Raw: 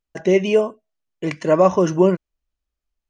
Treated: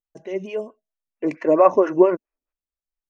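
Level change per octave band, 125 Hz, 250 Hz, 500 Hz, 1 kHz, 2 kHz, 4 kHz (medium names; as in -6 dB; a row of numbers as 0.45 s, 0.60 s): -15.0 dB, -2.5 dB, -1.5 dB, +1.0 dB, -6.5 dB, under -10 dB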